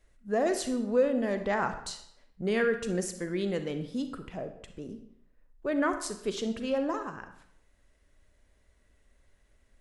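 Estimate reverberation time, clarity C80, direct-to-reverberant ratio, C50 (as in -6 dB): 0.70 s, 12.5 dB, 8.0 dB, 9.5 dB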